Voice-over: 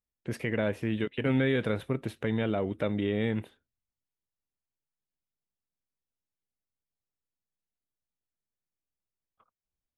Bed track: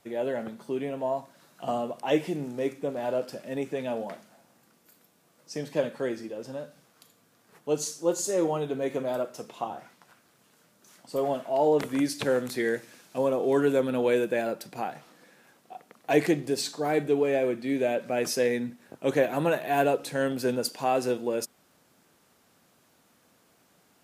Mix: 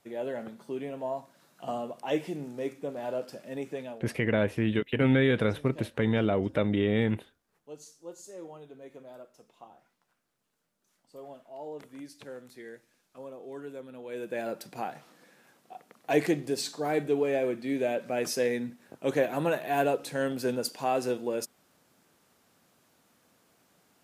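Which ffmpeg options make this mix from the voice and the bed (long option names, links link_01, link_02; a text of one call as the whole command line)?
ffmpeg -i stem1.wav -i stem2.wav -filter_complex "[0:a]adelay=3750,volume=3dB[link_01];[1:a]volume=11dB,afade=type=out:start_time=3.76:duration=0.26:silence=0.211349,afade=type=in:start_time=14.08:duration=0.51:silence=0.16788[link_02];[link_01][link_02]amix=inputs=2:normalize=0" out.wav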